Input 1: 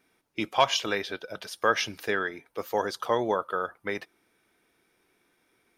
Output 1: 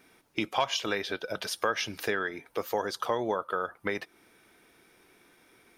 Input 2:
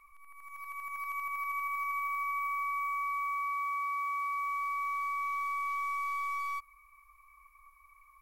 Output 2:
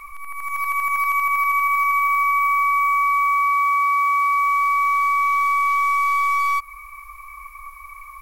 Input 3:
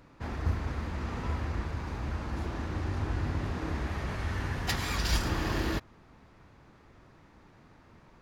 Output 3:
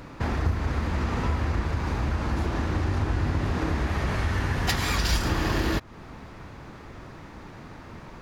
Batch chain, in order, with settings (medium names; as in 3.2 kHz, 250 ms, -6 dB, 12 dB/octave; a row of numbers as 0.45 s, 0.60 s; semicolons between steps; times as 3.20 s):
compression 2.5:1, threshold -40 dBFS; peak normalisation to -12 dBFS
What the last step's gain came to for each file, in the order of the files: +8.5 dB, +21.0 dB, +14.0 dB